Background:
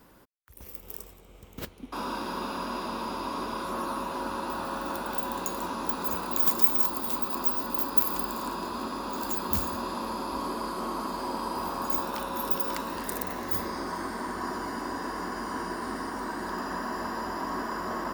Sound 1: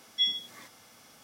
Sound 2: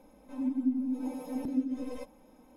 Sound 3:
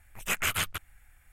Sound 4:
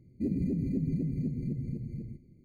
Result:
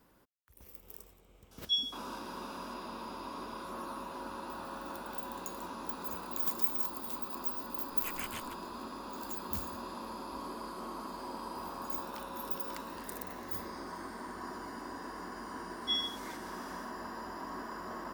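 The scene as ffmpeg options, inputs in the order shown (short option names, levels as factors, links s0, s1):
-filter_complex "[1:a]asplit=2[s0][s1];[0:a]volume=0.335[s2];[s0]asuperstop=centerf=2100:order=20:qfactor=2.4[s3];[s1]dynaudnorm=f=110:g=5:m=4.47[s4];[s3]atrim=end=1.23,asetpts=PTS-STARTPTS,volume=0.631,afade=t=in:d=0.004:c=hsin,afade=t=out:st=1.226:d=0.004:c=hsin,adelay=1510[s5];[3:a]atrim=end=1.32,asetpts=PTS-STARTPTS,volume=0.178,afade=t=in:d=0.004:c=hsin,afade=t=out:st=1.316:d=0.004:c=hsin,adelay=7760[s6];[s4]atrim=end=1.23,asetpts=PTS-STARTPTS,volume=0.237,afade=t=in:d=0.004:c=hsin,afade=t=out:st=1.226:d=0.004:c=hsin,adelay=15690[s7];[s2][s5][s6][s7]amix=inputs=4:normalize=0"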